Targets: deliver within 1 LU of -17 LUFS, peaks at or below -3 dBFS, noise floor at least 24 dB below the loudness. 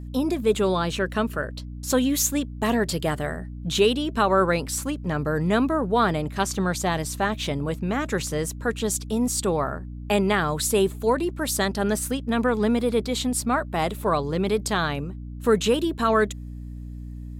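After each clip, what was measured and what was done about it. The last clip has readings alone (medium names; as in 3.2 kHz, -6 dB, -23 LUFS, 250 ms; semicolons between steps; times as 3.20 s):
hum 60 Hz; highest harmonic 300 Hz; hum level -33 dBFS; loudness -24.0 LUFS; peak level -8.5 dBFS; loudness target -17.0 LUFS
-> de-hum 60 Hz, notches 5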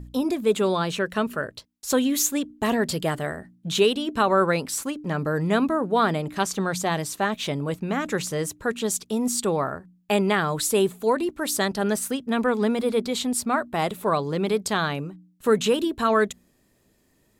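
hum not found; loudness -24.5 LUFS; peak level -9.0 dBFS; loudness target -17.0 LUFS
-> trim +7.5 dB; peak limiter -3 dBFS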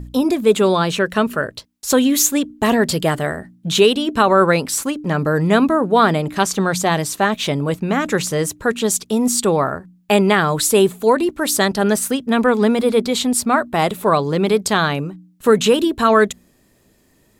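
loudness -17.0 LUFS; peak level -3.0 dBFS; noise floor -57 dBFS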